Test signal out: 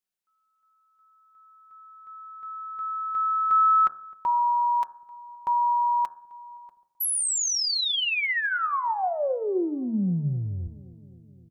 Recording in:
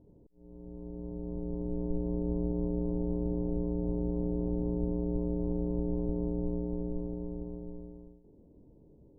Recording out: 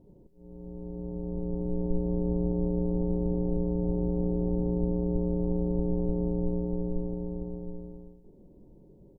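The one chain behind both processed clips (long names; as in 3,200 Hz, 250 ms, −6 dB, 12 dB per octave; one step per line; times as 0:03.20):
comb filter 5.4 ms, depth 37%
hum removal 78.47 Hz, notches 22
on a send: feedback echo with a low-pass in the loop 260 ms, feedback 72%, low-pass 830 Hz, level −20 dB
on the sum: level +3.5 dB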